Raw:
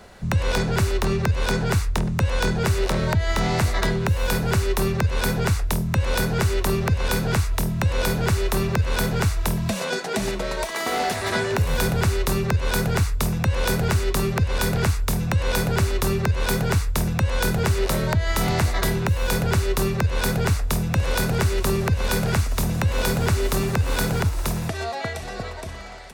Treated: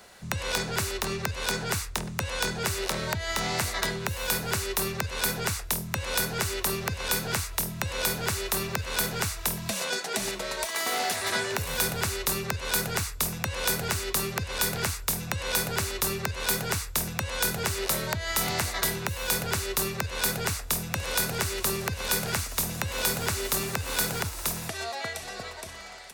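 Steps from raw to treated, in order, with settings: tilt +2.5 dB/oct; gain -5 dB

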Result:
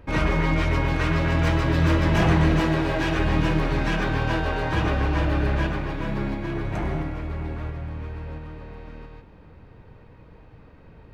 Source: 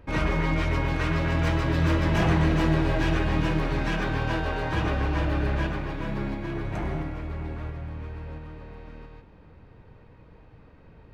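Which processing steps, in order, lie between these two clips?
2.6–3.19 low shelf 160 Hz -7.5 dB; gain +3 dB

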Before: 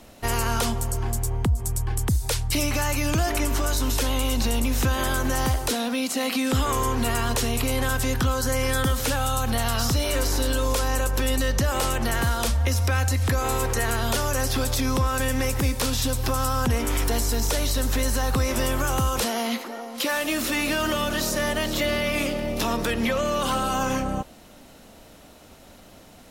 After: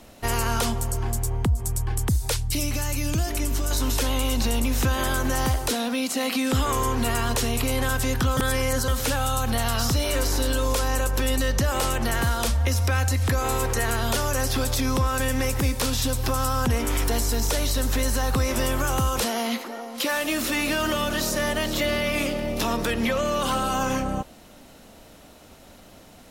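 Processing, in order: 2.36–3.71 bell 1100 Hz -8.5 dB 2.8 oct; 8.37–8.88 reverse

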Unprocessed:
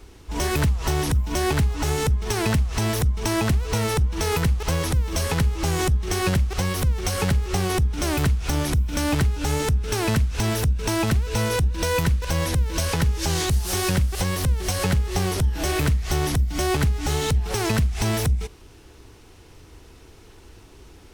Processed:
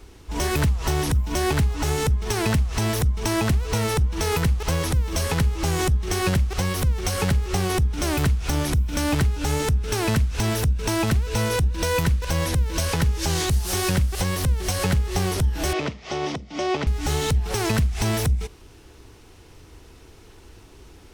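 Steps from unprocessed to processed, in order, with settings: 15.73–16.87 speaker cabinet 230–5300 Hz, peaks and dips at 580 Hz +5 dB, 1600 Hz -7 dB, 4200 Hz -5 dB

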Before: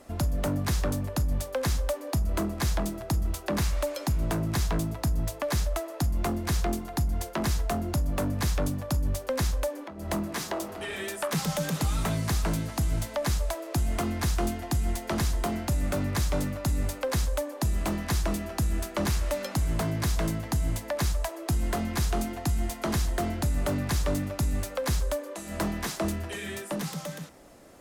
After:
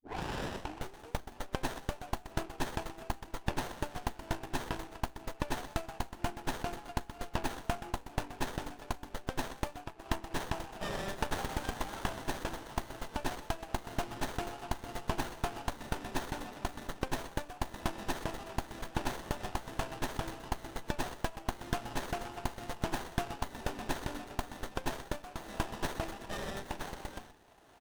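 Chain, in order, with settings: tape start at the beginning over 1.36 s; LPF 3900 Hz 12 dB/oct; differentiator; frequency-shifting echo 0.125 s, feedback 32%, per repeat +140 Hz, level -10.5 dB; transient shaper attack +2 dB, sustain -6 dB; low shelf 190 Hz -10.5 dB; fixed phaser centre 820 Hz, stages 8; running maximum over 17 samples; gain +17.5 dB

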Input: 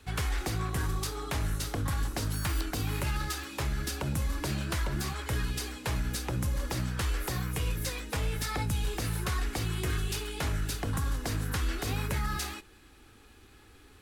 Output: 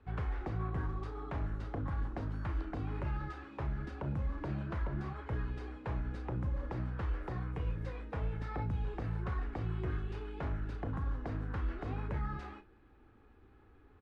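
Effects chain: LPF 1300 Hz 12 dB/oct; doubler 35 ms -11 dB; gain -5 dB

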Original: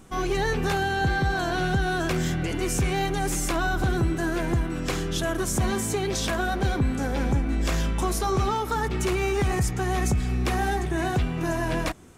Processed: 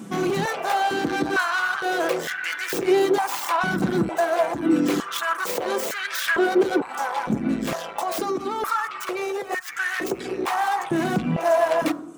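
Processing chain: tracing distortion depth 0.15 ms; reverb removal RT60 0.64 s; limiter -21 dBFS, peak gain reduction 5.5 dB; 8.02–9.71 negative-ratio compressor -32 dBFS, ratio -0.5; soft clip -29 dBFS, distortion -12 dB; on a send at -10.5 dB: resonant high shelf 1700 Hz -8 dB, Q 3 + reverb RT60 0.80 s, pre-delay 6 ms; on the sum: stepped high-pass 2.2 Hz 210–1600 Hz; gain +7.5 dB

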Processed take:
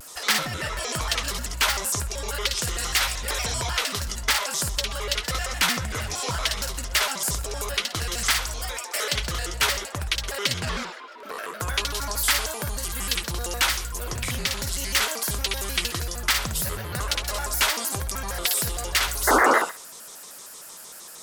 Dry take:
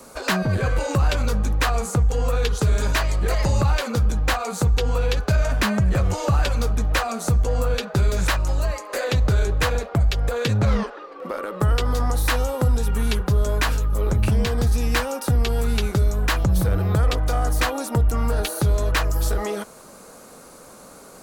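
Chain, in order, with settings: tilt shelf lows -10 dB, about 1200 Hz; painted sound noise, 19.27–19.59, 270–1800 Hz -15 dBFS; thinning echo 63 ms, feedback 28%, high-pass 450 Hz, level -4 dB; shaped vibrato square 6.5 Hz, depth 250 cents; gain -3.5 dB

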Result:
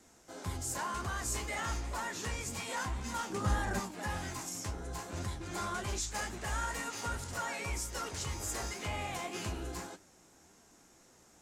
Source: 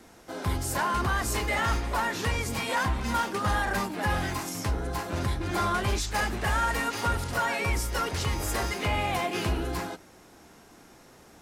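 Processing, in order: bell 7100 Hz +11 dB 0.69 oct; flange 1.9 Hz, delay 9.4 ms, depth 9.3 ms, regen +55%; 3.3–3.8 low shelf 470 Hz +9.5 dB; gain -6.5 dB

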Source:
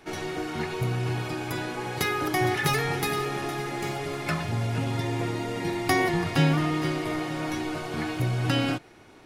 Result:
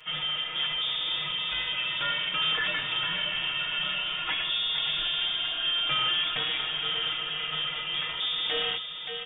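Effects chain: HPF 74 Hz 24 dB/oct; on a send: feedback echo 0.575 s, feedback 49%, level -12 dB; on the sum: soft clip -26.5 dBFS, distortion -9 dB; inverted band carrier 3500 Hz; comb 6.4 ms, depth 94%

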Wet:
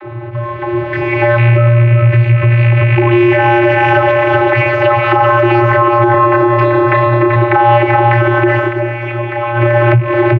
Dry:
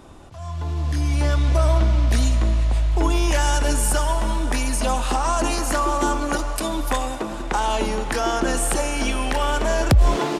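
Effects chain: rattling part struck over -16 dBFS, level -17 dBFS; ladder low-pass 2400 Hz, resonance 60%; feedback echo 0.386 s, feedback 41%, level -5 dB; vocoder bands 32, square 118 Hz; 6.11–7.36 doubler 31 ms -3 dB; 8.58–9.7 dip -14 dB, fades 0.15 s; compressor 12:1, threshold -36 dBFS, peak gain reduction 18 dB; maximiser +32.5 dB; gain -1 dB

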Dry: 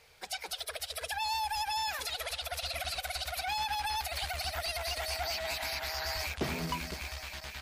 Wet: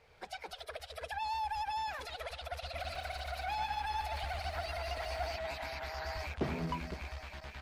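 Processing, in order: recorder AGC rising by 18 dB/s; LPF 1200 Hz 6 dB/oct; 2.63–5.36 lo-fi delay 0.146 s, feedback 35%, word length 11-bit, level -5 dB

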